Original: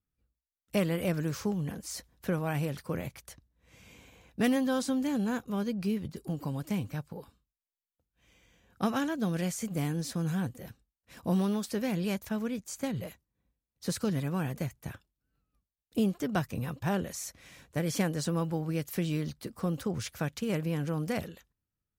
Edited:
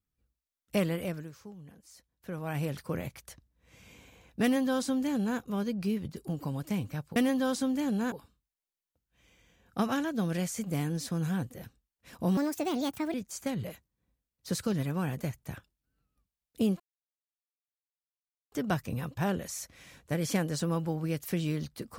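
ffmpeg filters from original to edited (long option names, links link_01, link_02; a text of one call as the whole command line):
ffmpeg -i in.wav -filter_complex "[0:a]asplit=8[link_01][link_02][link_03][link_04][link_05][link_06][link_07][link_08];[link_01]atrim=end=1.32,asetpts=PTS-STARTPTS,afade=type=out:start_time=0.84:duration=0.48:silence=0.158489[link_09];[link_02]atrim=start=1.32:end=2.19,asetpts=PTS-STARTPTS,volume=-16dB[link_10];[link_03]atrim=start=2.19:end=7.162,asetpts=PTS-STARTPTS,afade=type=in:duration=0.48:silence=0.158489[link_11];[link_04]atrim=start=4.428:end=5.392[link_12];[link_05]atrim=start=7.158:end=11.414[link_13];[link_06]atrim=start=11.41:end=12.51,asetpts=PTS-STARTPTS,asetrate=63063,aresample=44100,atrim=end_sample=33923,asetpts=PTS-STARTPTS[link_14];[link_07]atrim=start=12.506:end=16.17,asetpts=PTS-STARTPTS,afade=type=out:start_time=3.66:duration=0.004:curve=hsin,apad=pad_dur=1.72[link_15];[link_08]atrim=start=16.17,asetpts=PTS-STARTPTS,afade=type=in:duration=0.004:curve=hsin[link_16];[link_09][link_10][link_11]concat=n=3:v=0:a=1[link_17];[link_17][link_12]acrossfade=duration=0.004:curve1=hsin:curve2=hsin[link_18];[link_18][link_13]acrossfade=duration=0.004:curve1=hsin:curve2=hsin[link_19];[link_19][link_14]acrossfade=duration=0.004:curve1=hsin:curve2=hsin[link_20];[link_15][link_16]concat=n=2:v=0:a=1[link_21];[link_20][link_21]acrossfade=duration=0.004:curve1=hsin:curve2=hsin" out.wav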